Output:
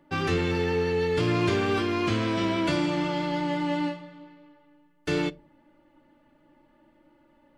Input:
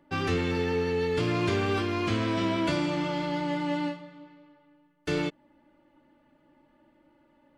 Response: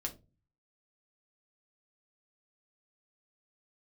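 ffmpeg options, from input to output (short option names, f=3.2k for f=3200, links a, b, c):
-filter_complex "[0:a]asplit=2[a][b];[b]asubboost=boost=2.5:cutoff=70[c];[1:a]atrim=start_sample=2205[d];[c][d]afir=irnorm=-1:irlink=0,volume=-10.5dB[e];[a][e]amix=inputs=2:normalize=0"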